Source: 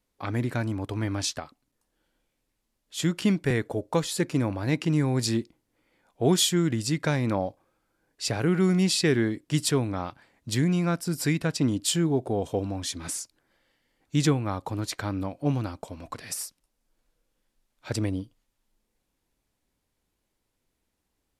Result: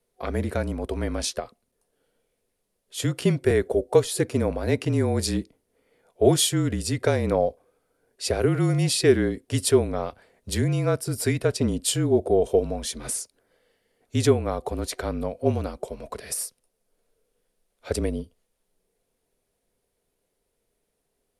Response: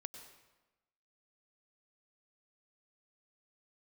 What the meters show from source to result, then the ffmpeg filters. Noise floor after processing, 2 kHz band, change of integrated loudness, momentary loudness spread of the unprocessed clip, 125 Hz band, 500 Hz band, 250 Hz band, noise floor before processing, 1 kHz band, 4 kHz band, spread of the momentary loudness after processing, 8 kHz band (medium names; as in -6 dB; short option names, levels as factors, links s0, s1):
-77 dBFS, 0.0 dB, +2.5 dB, 12 LU, +1.0 dB, +7.5 dB, -0.5 dB, -79 dBFS, +1.5 dB, 0.0 dB, 10 LU, +2.0 dB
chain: -af "afreqshift=-34,superequalizer=7b=3.16:8b=2.24:16b=2"